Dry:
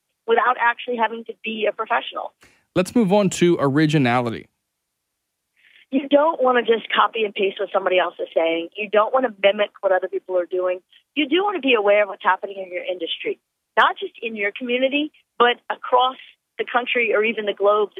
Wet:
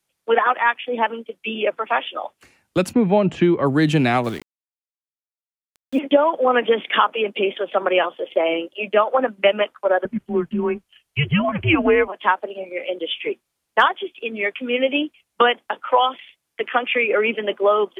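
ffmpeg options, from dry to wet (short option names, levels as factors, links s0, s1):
-filter_complex "[0:a]asplit=3[s0][s1][s2];[s0]afade=t=out:st=2.92:d=0.02[s3];[s1]lowpass=2300,afade=t=in:st=2.92:d=0.02,afade=t=out:st=3.65:d=0.02[s4];[s2]afade=t=in:st=3.65:d=0.02[s5];[s3][s4][s5]amix=inputs=3:normalize=0,asettb=1/sr,asplit=3[s6][s7][s8];[s6]atrim=end=4.244[s9];[s7]atrim=start=4.24:end=5.99,asetpts=PTS-STARTPTS,afade=t=in:d=0.004:c=qsin,afade=t=out:st=1.746:d=0.004:c=qsin,aeval=exprs='val(0)*gte(abs(val(0)),0.0178)':c=same[s10];[s8]atrim=start=5.986[s11];[s9][s10]acrossfade=d=0.004:c1=hsin:c2=qsin[s12];[s12][s11]acrossfade=d=0.004:c1=qsin:c2=hsin,asettb=1/sr,asplit=3[s13][s14][s15];[s13]atrim=end=10.054[s16];[s14]atrim=start=10.05:end=12.08,asetpts=PTS-STARTPTS,afade=t=in:d=0.004:c=qsin,afade=t=out:st=2.026:d=0.004:c=qsin,afreqshift=-160[s17];[s15]atrim=start=12.076[s18];[s16][s17]acrossfade=d=0.004:c1=hsin:c2=qsin[s19];[s19][s18]acrossfade=d=0.004:c1=qsin:c2=hsin"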